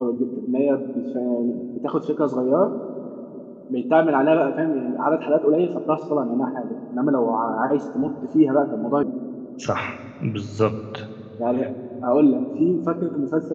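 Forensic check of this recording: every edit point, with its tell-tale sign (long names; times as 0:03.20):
0:09.03: cut off before it has died away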